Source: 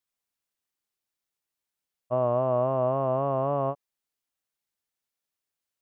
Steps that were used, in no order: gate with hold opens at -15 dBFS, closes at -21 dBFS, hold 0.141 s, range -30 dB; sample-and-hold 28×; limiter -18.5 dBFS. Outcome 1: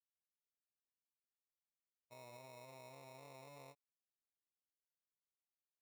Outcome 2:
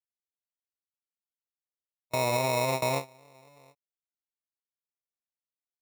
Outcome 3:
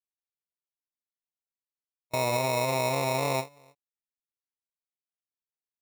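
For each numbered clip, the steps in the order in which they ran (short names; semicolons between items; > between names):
sample-and-hold > limiter > gate with hold; sample-and-hold > gate with hold > limiter; gate with hold > sample-and-hold > limiter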